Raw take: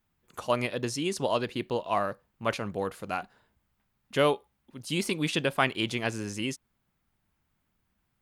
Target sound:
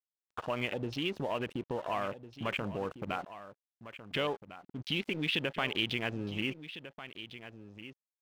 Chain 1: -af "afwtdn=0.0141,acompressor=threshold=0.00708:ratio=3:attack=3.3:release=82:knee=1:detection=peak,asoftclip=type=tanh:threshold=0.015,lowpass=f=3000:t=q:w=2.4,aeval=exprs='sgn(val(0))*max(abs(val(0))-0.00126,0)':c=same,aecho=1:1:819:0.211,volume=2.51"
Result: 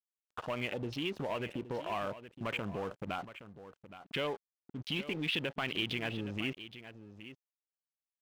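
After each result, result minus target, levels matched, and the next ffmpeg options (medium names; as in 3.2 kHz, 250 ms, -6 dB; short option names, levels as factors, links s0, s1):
saturation: distortion +14 dB; echo 583 ms early
-af "afwtdn=0.0141,acompressor=threshold=0.00708:ratio=3:attack=3.3:release=82:knee=1:detection=peak,asoftclip=type=tanh:threshold=0.0447,lowpass=f=3000:t=q:w=2.4,aeval=exprs='sgn(val(0))*max(abs(val(0))-0.00126,0)':c=same,aecho=1:1:819:0.211,volume=2.51"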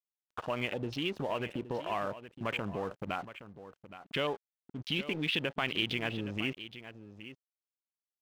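echo 583 ms early
-af "afwtdn=0.0141,acompressor=threshold=0.00708:ratio=3:attack=3.3:release=82:knee=1:detection=peak,asoftclip=type=tanh:threshold=0.0447,lowpass=f=3000:t=q:w=2.4,aeval=exprs='sgn(val(0))*max(abs(val(0))-0.00126,0)':c=same,aecho=1:1:1402:0.211,volume=2.51"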